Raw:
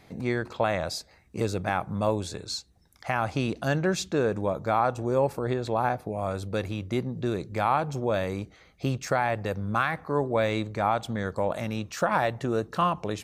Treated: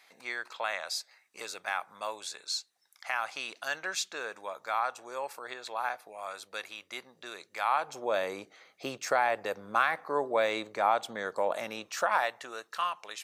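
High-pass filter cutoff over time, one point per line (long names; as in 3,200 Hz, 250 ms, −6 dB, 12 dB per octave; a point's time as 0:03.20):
0:07.56 1,200 Hz
0:08.20 490 Hz
0:11.73 490 Hz
0:12.69 1,400 Hz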